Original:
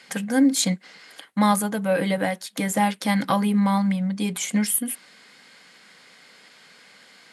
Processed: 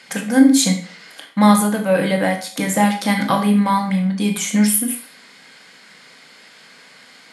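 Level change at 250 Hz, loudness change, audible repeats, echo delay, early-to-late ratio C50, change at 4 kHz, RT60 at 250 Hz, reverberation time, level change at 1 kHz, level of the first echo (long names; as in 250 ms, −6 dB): +6.5 dB, +6.0 dB, no echo audible, no echo audible, 8.5 dB, +5.5 dB, 0.45 s, 0.45 s, +5.5 dB, no echo audible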